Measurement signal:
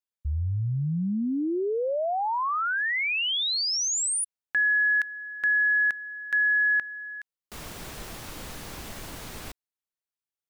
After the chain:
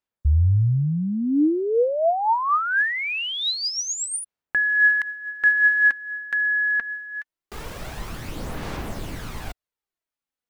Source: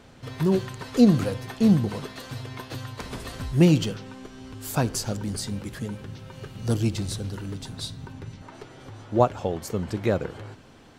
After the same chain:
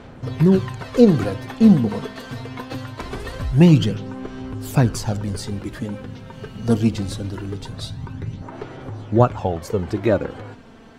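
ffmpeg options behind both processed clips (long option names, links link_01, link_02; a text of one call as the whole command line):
ffmpeg -i in.wav -af "highshelf=frequency=3500:gain=-9.5,aphaser=in_gain=1:out_gain=1:delay=4.5:decay=0.44:speed=0.23:type=sinusoidal,volume=5.5dB" out.wav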